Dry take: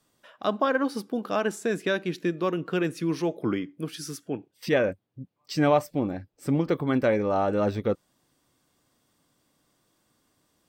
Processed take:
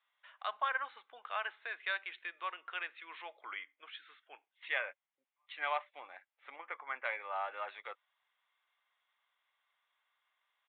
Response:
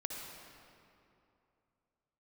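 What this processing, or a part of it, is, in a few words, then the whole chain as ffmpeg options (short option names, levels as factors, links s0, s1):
musical greeting card: -filter_complex "[0:a]aresample=8000,aresample=44100,highpass=f=890:w=0.5412,highpass=f=890:w=1.3066,equalizer=f=2100:t=o:w=0.29:g=7,asettb=1/sr,asplit=3[s0][s1][s2];[s0]atrim=end=6.564[s3];[s1]atrim=start=6.56:end=7.05,asetpts=PTS-STARTPTS,afade=t=in:d=0.004:c=qsin,afade=t=out:st=0.486:d=0.004:c=qsin,lowpass=f=2400:w=0.5412,lowpass=f=2400:w=1.3066[s4];[s2]atrim=start=7.046[s5];[s3][s4]acrossfade=d=0.004:c1=hsin:c2=qsin[s6];[s6][s5]acrossfade=d=0.004:c1=qsin:c2=hsin,volume=0.501"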